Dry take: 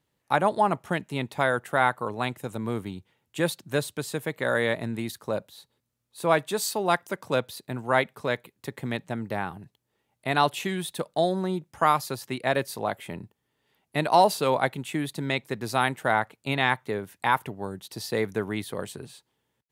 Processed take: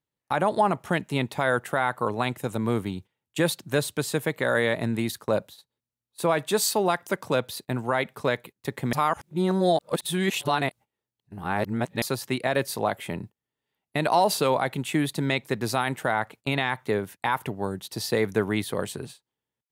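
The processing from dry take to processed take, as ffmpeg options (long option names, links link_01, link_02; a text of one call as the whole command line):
ffmpeg -i in.wav -filter_complex "[0:a]asplit=3[link_01][link_02][link_03];[link_01]atrim=end=8.932[link_04];[link_02]atrim=start=8.928:end=12.022,asetpts=PTS-STARTPTS,areverse[link_05];[link_03]atrim=start=12.018[link_06];[link_04][link_05]acrossfade=duration=0.004:curve1=hsin:curve2=hsin[link_07];[link_07][link_06]acrossfade=duration=0.004:curve1=hsin:curve2=hsin,agate=range=-17dB:threshold=-45dB:ratio=16:detection=peak,alimiter=limit=-16dB:level=0:latency=1:release=74,volume=4.5dB" out.wav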